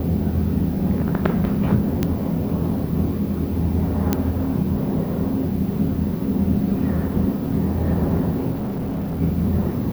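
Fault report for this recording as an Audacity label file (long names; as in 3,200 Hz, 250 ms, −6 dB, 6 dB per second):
2.030000	2.030000	click −7 dBFS
4.130000	4.130000	click −4 dBFS
8.510000	9.220000	clipping −22.5 dBFS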